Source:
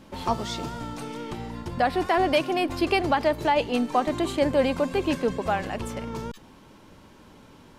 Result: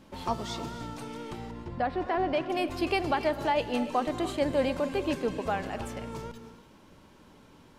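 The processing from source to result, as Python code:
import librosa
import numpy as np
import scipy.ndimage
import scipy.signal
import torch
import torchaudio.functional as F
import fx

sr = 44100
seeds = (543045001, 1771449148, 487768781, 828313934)

y = fx.spacing_loss(x, sr, db_at_10k=21, at=(1.51, 2.5))
y = fx.rev_gated(y, sr, seeds[0], gate_ms=330, shape='rising', drr_db=11.5)
y = y * 10.0 ** (-5.0 / 20.0)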